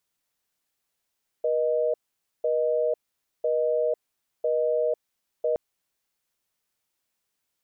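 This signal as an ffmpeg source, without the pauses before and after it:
ffmpeg -f lavfi -i "aevalsrc='0.0631*(sin(2*PI*480*t)+sin(2*PI*620*t))*clip(min(mod(t,1),0.5-mod(t,1))/0.005,0,1)':duration=4.12:sample_rate=44100" out.wav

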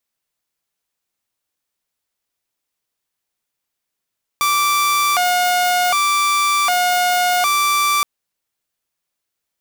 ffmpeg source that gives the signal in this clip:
ffmpeg -f lavfi -i "aevalsrc='0.266*(2*mod((944.5*t+225.5/0.66*(0.5-abs(mod(0.66*t,1)-0.5))),1)-1)':duration=3.62:sample_rate=44100" out.wav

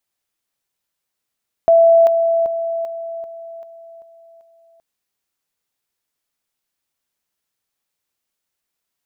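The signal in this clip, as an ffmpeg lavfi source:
ffmpeg -f lavfi -i "aevalsrc='pow(10,(-7-6*floor(t/0.39))/20)*sin(2*PI*666*t)':duration=3.12:sample_rate=44100" out.wav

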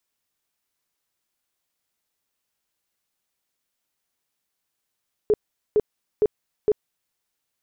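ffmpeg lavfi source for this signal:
ffmpeg -f lavfi -i "aevalsrc='0.2*sin(2*PI*423*mod(t,0.46))*lt(mod(t,0.46),16/423)':duration=1.84:sample_rate=44100" out.wav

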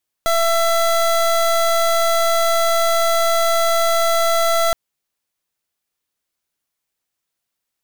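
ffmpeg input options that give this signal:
ffmpeg -f lavfi -i "aevalsrc='0.158*(2*lt(mod(669*t,1),0.26)-1)':duration=4.47:sample_rate=44100" out.wav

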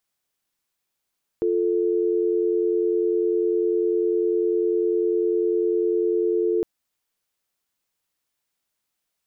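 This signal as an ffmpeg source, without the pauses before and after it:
ffmpeg -f lavfi -i "aevalsrc='0.0841*(sin(2*PI*350*t)+sin(2*PI*440*t))':duration=5.21:sample_rate=44100" out.wav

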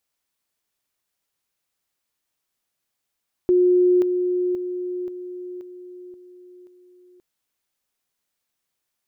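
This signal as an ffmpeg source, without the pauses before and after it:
ffmpeg -f lavfi -i "aevalsrc='pow(10,(-13-6*floor(t/0.53))/20)*sin(2*PI*360*t)':duration=3.71:sample_rate=44100" out.wav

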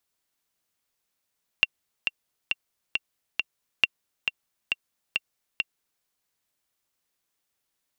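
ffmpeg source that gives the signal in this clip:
ffmpeg -f lavfi -i "aevalsrc='pow(10,(-4.5-6.5*gte(mod(t,5*60/136),60/136))/20)*sin(2*PI*2750*mod(t,60/136))*exp(-6.91*mod(t,60/136)/0.03)':duration=4.41:sample_rate=44100" out.wav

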